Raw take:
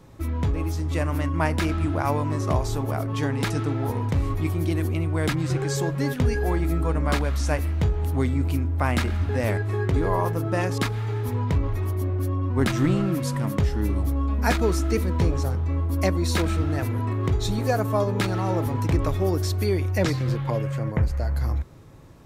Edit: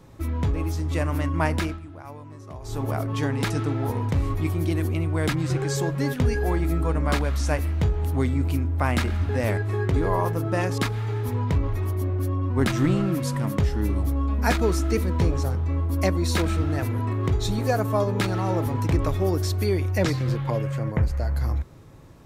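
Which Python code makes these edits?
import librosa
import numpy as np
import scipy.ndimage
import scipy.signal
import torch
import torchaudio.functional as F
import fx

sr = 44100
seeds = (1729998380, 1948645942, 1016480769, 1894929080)

y = fx.edit(x, sr, fx.fade_down_up(start_s=1.57, length_s=1.27, db=-16.5, fade_s=0.24), tone=tone)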